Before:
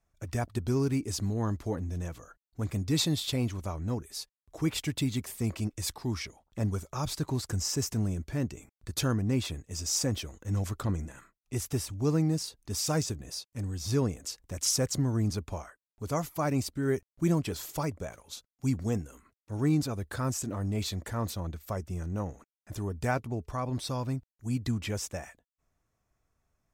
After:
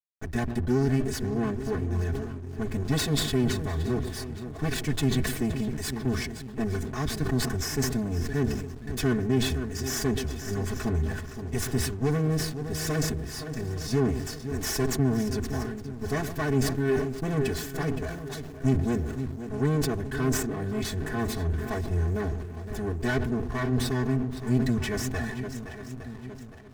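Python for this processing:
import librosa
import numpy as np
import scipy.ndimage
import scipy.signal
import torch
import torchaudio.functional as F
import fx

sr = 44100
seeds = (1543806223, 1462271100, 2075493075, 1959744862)

p1 = fx.lower_of_two(x, sr, delay_ms=4.7)
p2 = fx.echo_swing(p1, sr, ms=861, ratio=1.5, feedback_pct=34, wet_db=-12.5)
p3 = fx.rider(p2, sr, range_db=10, speed_s=2.0)
p4 = p2 + (p3 * librosa.db_to_amplitude(2.5))
p5 = fx.peak_eq(p4, sr, hz=1700.0, db=13.0, octaves=0.28)
p6 = 10.0 ** (-17.5 / 20.0) * np.tanh(p5 / 10.0 ** (-17.5 / 20.0))
p7 = fx.peak_eq(p6, sr, hz=110.0, db=12.5, octaves=2.5)
p8 = p7 + 0.81 * np.pad(p7, (int(2.7 * sr / 1000.0), 0))[:len(p7)]
p9 = fx.echo_filtered(p8, sr, ms=127, feedback_pct=52, hz=950.0, wet_db=-15.0)
p10 = fx.backlash(p9, sr, play_db=-35.5)
p11 = fx.sustainer(p10, sr, db_per_s=54.0)
y = p11 * librosa.db_to_amplitude(-8.5)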